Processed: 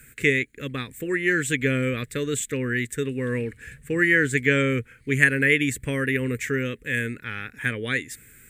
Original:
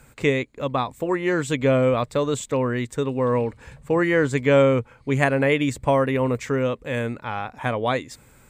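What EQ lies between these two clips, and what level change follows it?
drawn EQ curve 440 Hz 0 dB, 690 Hz −22 dB, 1,000 Hz −19 dB, 1,700 Hz +11 dB, 4,800 Hz −2 dB, 10,000 Hz +13 dB
−2.5 dB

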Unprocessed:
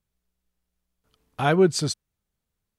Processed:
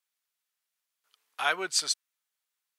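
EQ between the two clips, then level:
high-pass filter 1,300 Hz 12 dB per octave
+2.0 dB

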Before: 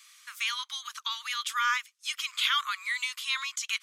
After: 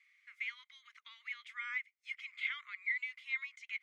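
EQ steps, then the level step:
resonant band-pass 2,100 Hz, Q 16
+2.0 dB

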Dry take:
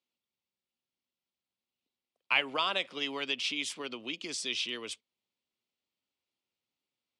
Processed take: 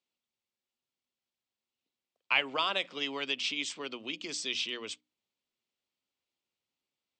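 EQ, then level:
linear-phase brick-wall low-pass 8,500 Hz
mains-hum notches 60/120/180/240/300 Hz
0.0 dB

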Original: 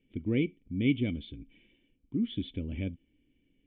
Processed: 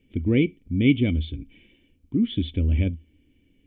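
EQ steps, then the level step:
parametric band 79 Hz +12 dB 0.31 octaves
+8.0 dB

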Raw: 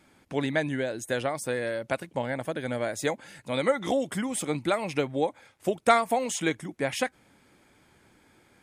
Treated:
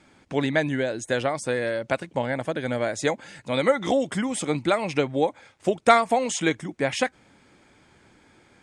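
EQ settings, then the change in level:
low-pass filter 8,400 Hz 24 dB per octave
+4.0 dB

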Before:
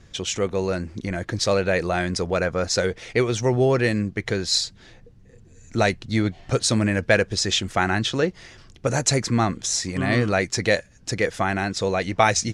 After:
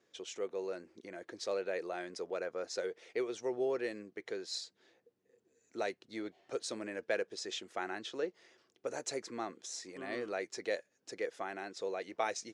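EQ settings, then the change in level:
resonant band-pass 390 Hz, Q 1.9
first difference
+12.0 dB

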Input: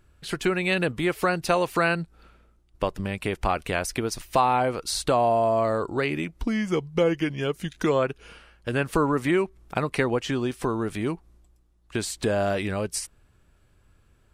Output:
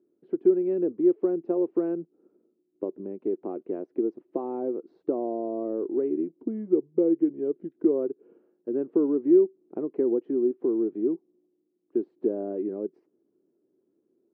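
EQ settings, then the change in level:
high-pass filter 240 Hz 24 dB per octave
low-pass with resonance 360 Hz, resonance Q 4.1
high-frequency loss of the air 110 metres
−5.5 dB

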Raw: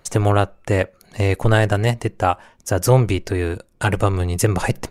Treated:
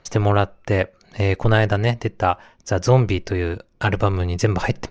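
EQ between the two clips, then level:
elliptic low-pass filter 6,000 Hz, stop band 70 dB
0.0 dB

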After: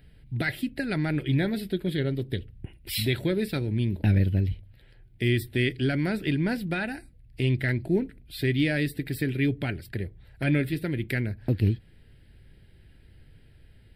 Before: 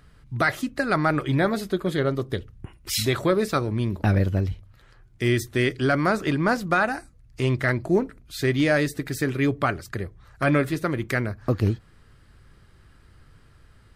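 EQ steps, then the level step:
dynamic equaliser 620 Hz, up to −8 dB, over −37 dBFS, Q 1.1
phaser with its sweep stopped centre 2,800 Hz, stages 4
0.0 dB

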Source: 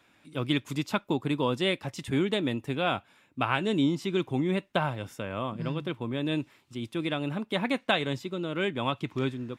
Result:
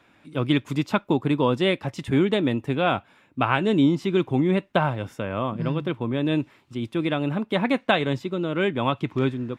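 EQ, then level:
high-shelf EQ 3,500 Hz −10 dB
+6.5 dB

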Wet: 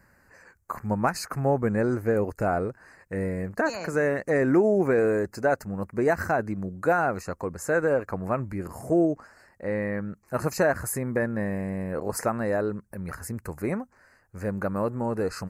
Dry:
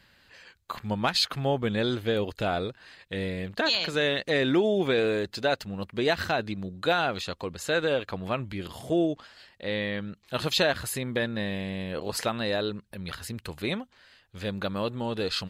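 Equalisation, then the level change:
Butterworth band-reject 3,400 Hz, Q 0.72
+3.0 dB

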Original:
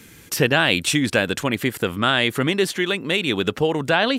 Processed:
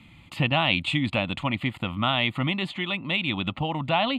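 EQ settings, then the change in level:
high-frequency loss of the air 150 metres
phaser with its sweep stopped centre 1,600 Hz, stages 6
0.0 dB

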